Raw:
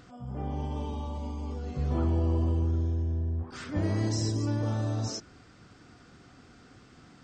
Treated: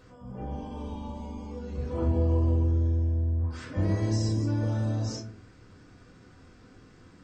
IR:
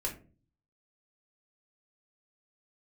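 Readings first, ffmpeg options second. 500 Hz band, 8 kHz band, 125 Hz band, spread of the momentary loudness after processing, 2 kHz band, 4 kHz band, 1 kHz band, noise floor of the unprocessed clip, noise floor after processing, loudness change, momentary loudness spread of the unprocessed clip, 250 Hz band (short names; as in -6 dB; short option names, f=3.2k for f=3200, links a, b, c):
+2.0 dB, -3.5 dB, +2.0 dB, 14 LU, -1.0 dB, -3.0 dB, -1.5 dB, -55 dBFS, -55 dBFS, +2.0 dB, 9 LU, +1.0 dB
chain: -filter_complex "[1:a]atrim=start_sample=2205[a];[0:a][a]afir=irnorm=-1:irlink=0,volume=-3.5dB"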